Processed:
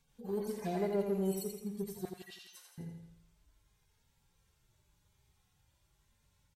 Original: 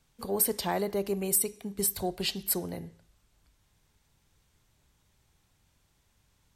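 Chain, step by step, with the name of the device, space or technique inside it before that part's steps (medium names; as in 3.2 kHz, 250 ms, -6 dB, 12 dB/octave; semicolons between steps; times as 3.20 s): harmonic-percussive separation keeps harmonic; parallel distortion (in parallel at -7.5 dB: hard clipper -32.5 dBFS, distortion -8 dB); 2.05–2.78 s: on the sum: inverse Chebyshev high-pass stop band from 260 Hz, stop band 70 dB; feedback delay 84 ms, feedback 48%, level -6 dB; trim -5 dB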